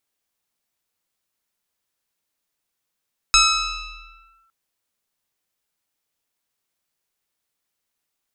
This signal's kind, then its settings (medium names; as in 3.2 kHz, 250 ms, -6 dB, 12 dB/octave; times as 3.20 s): FM tone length 1.16 s, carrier 1.34 kHz, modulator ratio 0.97, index 4.4, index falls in 1.15 s linear, decay 1.34 s, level -9 dB